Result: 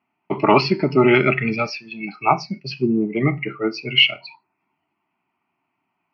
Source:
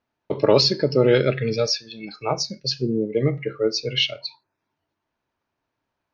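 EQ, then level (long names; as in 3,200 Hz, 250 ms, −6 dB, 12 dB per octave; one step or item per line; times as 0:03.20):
loudspeaker in its box 180–3,400 Hz, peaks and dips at 180 Hz +7 dB, 260 Hz +3 dB, 380 Hz +7 dB, 740 Hz +5 dB, 1,800 Hz +8 dB, 2,500 Hz +5 dB
dynamic equaliser 1,300 Hz, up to +5 dB, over −28 dBFS, Q 0.75
phaser with its sweep stopped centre 2,500 Hz, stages 8
+6.0 dB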